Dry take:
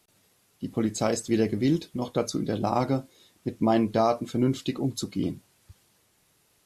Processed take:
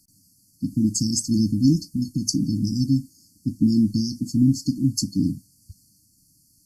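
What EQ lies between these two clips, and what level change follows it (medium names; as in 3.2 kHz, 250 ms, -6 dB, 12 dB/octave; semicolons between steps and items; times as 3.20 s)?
dynamic bell 5.6 kHz, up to +5 dB, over -51 dBFS, Q 2.4; brick-wall FIR band-stop 320–4300 Hz; +7.5 dB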